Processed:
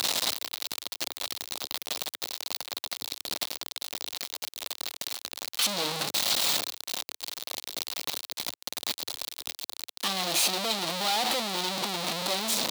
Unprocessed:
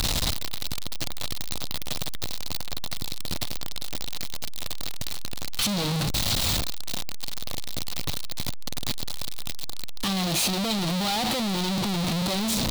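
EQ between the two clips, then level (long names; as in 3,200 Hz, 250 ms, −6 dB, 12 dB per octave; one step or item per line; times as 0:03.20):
high-pass filter 410 Hz 12 dB per octave
0.0 dB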